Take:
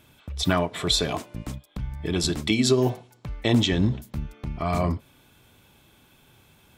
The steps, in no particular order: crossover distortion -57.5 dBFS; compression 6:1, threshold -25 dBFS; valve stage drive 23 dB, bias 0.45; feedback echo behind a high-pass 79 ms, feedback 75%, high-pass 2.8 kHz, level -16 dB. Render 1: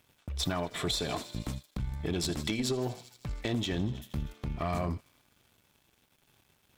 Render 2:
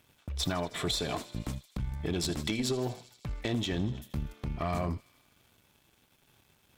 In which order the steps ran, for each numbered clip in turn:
feedback echo behind a high-pass > compression > valve stage > crossover distortion; compression > crossover distortion > feedback echo behind a high-pass > valve stage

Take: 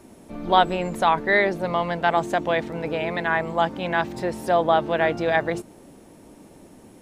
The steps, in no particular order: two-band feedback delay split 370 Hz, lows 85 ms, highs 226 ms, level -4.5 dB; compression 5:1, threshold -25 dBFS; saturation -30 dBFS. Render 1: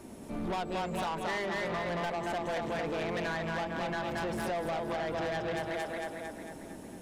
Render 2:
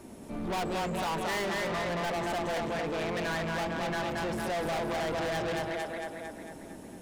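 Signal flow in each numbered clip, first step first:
two-band feedback delay > compression > saturation; two-band feedback delay > saturation > compression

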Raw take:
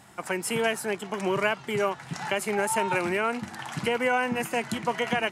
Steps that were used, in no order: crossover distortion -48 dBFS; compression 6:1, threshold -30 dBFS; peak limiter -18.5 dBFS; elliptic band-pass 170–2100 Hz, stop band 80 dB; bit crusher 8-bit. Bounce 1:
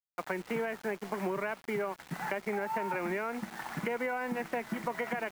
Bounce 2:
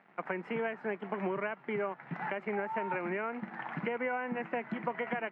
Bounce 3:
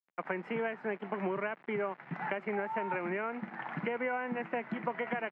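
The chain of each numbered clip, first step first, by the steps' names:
elliptic band-pass > crossover distortion > bit crusher > peak limiter > compression; bit crusher > crossover distortion > compression > peak limiter > elliptic band-pass; crossover distortion > compression > bit crusher > elliptic band-pass > peak limiter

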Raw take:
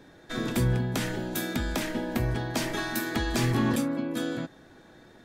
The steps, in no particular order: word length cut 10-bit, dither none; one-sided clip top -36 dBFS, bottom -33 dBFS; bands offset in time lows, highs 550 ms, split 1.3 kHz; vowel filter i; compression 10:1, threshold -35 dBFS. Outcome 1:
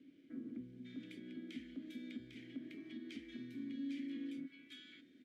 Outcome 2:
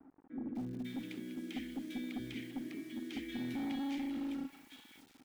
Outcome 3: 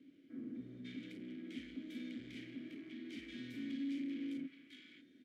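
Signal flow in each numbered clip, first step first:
bands offset in time > compression > word length cut > vowel filter > one-sided clip; vowel filter > one-sided clip > word length cut > compression > bands offset in time; one-sided clip > bands offset in time > word length cut > vowel filter > compression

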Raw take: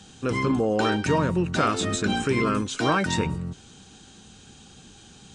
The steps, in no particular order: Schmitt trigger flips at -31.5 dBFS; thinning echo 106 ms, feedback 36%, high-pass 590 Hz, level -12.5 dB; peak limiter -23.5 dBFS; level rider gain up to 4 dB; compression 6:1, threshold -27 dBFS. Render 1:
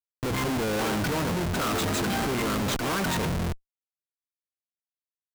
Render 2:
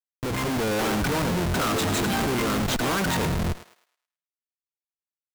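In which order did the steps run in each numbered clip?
thinning echo > Schmitt trigger > level rider > compression > peak limiter; Schmitt trigger > peak limiter > thinning echo > compression > level rider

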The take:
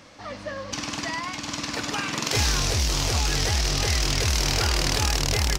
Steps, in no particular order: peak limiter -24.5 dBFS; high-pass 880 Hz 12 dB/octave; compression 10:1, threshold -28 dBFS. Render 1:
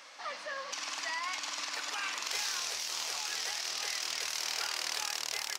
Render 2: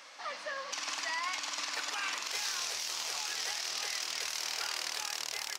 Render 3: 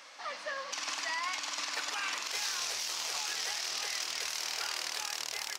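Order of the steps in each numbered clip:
compression > peak limiter > high-pass; compression > high-pass > peak limiter; high-pass > compression > peak limiter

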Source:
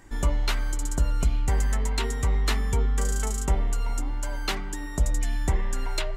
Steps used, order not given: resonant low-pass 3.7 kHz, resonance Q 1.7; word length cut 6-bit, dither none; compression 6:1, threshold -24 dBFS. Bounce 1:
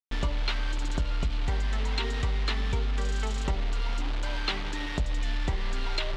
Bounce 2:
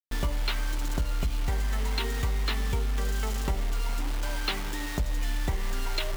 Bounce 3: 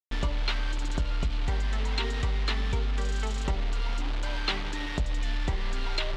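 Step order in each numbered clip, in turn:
word length cut > resonant low-pass > compression; resonant low-pass > word length cut > compression; word length cut > compression > resonant low-pass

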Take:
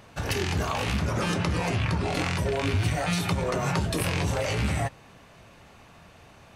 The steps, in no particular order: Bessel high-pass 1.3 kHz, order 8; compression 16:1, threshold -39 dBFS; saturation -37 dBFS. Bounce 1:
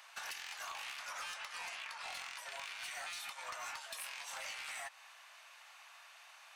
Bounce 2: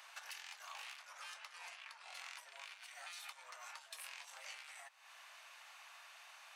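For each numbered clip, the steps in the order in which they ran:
Bessel high-pass > compression > saturation; compression > saturation > Bessel high-pass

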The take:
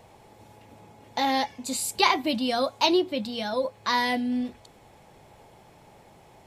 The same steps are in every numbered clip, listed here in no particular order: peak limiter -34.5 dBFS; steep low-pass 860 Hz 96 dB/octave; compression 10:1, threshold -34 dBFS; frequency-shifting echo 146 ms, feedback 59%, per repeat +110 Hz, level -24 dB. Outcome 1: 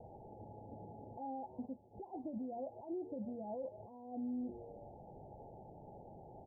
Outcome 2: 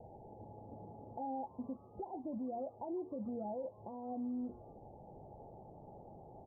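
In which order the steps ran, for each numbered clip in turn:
frequency-shifting echo > compression > peak limiter > steep low-pass; compression > steep low-pass > peak limiter > frequency-shifting echo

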